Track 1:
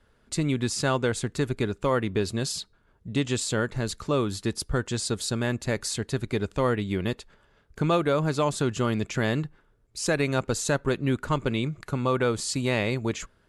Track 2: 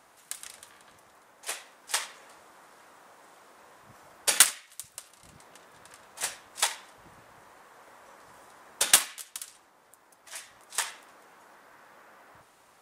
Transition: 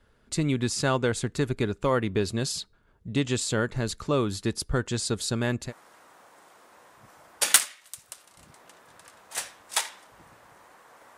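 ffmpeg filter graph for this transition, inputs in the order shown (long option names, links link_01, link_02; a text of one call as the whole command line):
ffmpeg -i cue0.wav -i cue1.wav -filter_complex "[0:a]apad=whole_dur=11.17,atrim=end=11.17,atrim=end=5.73,asetpts=PTS-STARTPTS[link_01];[1:a]atrim=start=2.49:end=8.03,asetpts=PTS-STARTPTS[link_02];[link_01][link_02]acrossfade=duration=0.1:curve1=tri:curve2=tri" out.wav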